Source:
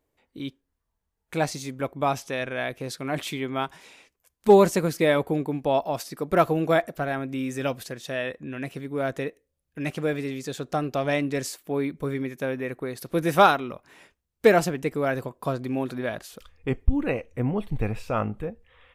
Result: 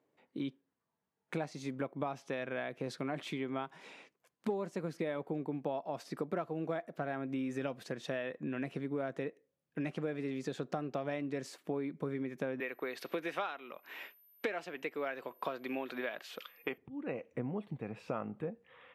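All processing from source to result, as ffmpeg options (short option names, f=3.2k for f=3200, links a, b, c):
-filter_complex "[0:a]asettb=1/sr,asplit=3[a][b][c];[a]atrim=end=12.604[d];[b]atrim=start=12.6:end=16.78,asetpts=PTS-STARTPTS,afade=t=in:d=0.004:c=qsin,afade=t=out:st=4.176:d=0.004:c=qsin,highpass=350,aeval=exprs='val(0)+0.00562*sin(2*PI*13000*n/s)':c=same,equalizer=f=2.7k:t=o:w=1.7:g=11[e];[c]atrim=start=16.776[f];[d][e]acrossfade=d=0.004:c1=hsin:c2=qsin[g];[g][f]acrossfade=d=0.004:c1=qsin:c2=hsin,acompressor=threshold=-34dB:ratio=12,highpass=f=140:w=0.5412,highpass=f=140:w=1.3066,aemphasis=mode=reproduction:type=75fm"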